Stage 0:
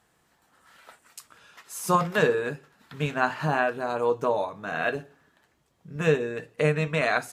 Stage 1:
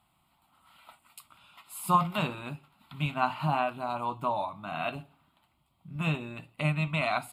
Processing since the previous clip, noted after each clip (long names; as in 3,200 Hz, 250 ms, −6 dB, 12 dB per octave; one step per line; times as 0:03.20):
phaser with its sweep stopped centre 1,700 Hz, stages 6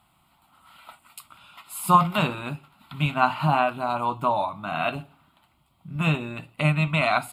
parametric band 1,400 Hz +3 dB 0.27 octaves
level +6.5 dB